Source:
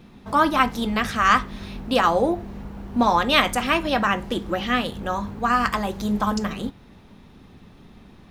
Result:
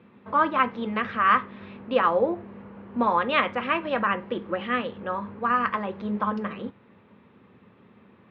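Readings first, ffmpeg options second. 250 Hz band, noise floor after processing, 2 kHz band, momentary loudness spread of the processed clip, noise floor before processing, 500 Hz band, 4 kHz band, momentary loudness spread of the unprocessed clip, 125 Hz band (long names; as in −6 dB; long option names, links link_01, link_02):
−6.0 dB, −57 dBFS, −4.0 dB, 14 LU, −49 dBFS, −2.0 dB, −10.5 dB, 11 LU, −8.0 dB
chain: -af "highpass=frequency=110:width=0.5412,highpass=frequency=110:width=1.3066,equalizer=frequency=150:width_type=q:width=4:gain=-9,equalizer=frequency=290:width_type=q:width=4:gain=-5,equalizer=frequency=500:width_type=q:width=4:gain=5,equalizer=frequency=740:width_type=q:width=4:gain=-6,equalizer=frequency=1100:width_type=q:width=4:gain=3,lowpass=frequency=2700:width=0.5412,lowpass=frequency=2700:width=1.3066,volume=-3.5dB"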